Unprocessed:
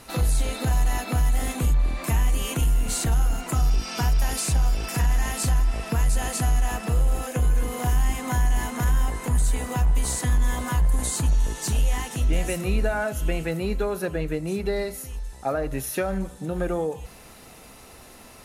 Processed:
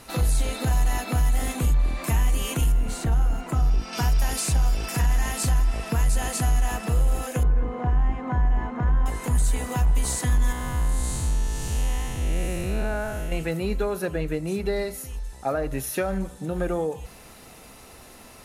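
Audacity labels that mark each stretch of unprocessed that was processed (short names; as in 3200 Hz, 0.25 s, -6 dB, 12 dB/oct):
2.720000	3.930000	high shelf 2800 Hz -11 dB
7.430000	9.060000	LPF 1400 Hz
10.520000	13.320000	time blur width 0.263 s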